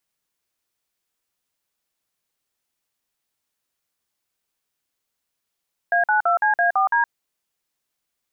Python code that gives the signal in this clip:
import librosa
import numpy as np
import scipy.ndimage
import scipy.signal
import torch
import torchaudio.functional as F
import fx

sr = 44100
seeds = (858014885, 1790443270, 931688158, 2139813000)

y = fx.dtmf(sr, digits='A92CA4D', tone_ms=118, gap_ms=49, level_db=-18.0)